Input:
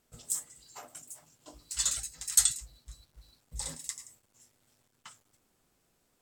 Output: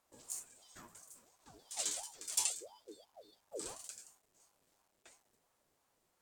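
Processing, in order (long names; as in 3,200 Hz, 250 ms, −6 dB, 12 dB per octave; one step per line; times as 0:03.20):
harmonic and percussive parts rebalanced percussive −11 dB
ring modulator whose carrier an LFO sweeps 640 Hz, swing 45%, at 2.9 Hz
level +1 dB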